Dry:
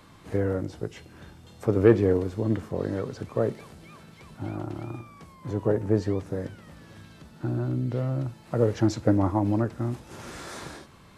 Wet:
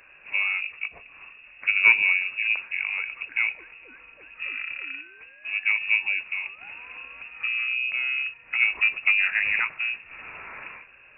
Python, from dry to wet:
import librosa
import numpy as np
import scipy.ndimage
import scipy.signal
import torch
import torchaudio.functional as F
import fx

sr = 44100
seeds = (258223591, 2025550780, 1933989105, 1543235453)

y = fx.spec_clip(x, sr, under_db=16, at=(9.26, 9.77), fade=0.02)
y = fx.freq_invert(y, sr, carrier_hz=2700)
y = fx.band_squash(y, sr, depth_pct=40, at=(6.61, 8.28))